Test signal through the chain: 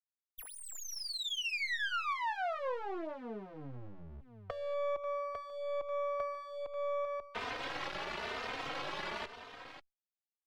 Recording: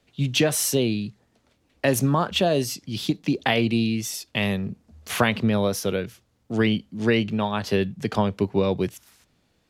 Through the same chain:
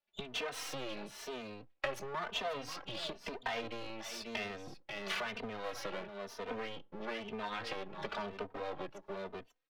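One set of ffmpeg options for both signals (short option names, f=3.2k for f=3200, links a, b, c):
-filter_complex "[0:a]acrossover=split=120|5700[a][b][c];[b]acontrast=60[d];[a][d][c]amix=inputs=3:normalize=0,alimiter=limit=-10dB:level=0:latency=1:release=166,afftdn=nr=27:nf=-40,asoftclip=type=tanh:threshold=-12dB,aeval=exprs='0.224*(cos(1*acos(clip(val(0)/0.224,-1,1)))-cos(1*PI/2))+0.00282*(cos(5*acos(clip(val(0)/0.224,-1,1)))-cos(5*PI/2))':c=same,aecho=1:1:539:0.211,aeval=exprs='max(val(0),0)':c=same,acompressor=threshold=-33dB:ratio=8,acrossover=split=430 4500:gain=0.2 1 0.2[e][f][g];[e][f][g]amix=inputs=3:normalize=0,asplit=2[h][i];[i]adelay=3.1,afreqshift=1[j];[h][j]amix=inputs=2:normalize=1,volume=6dB"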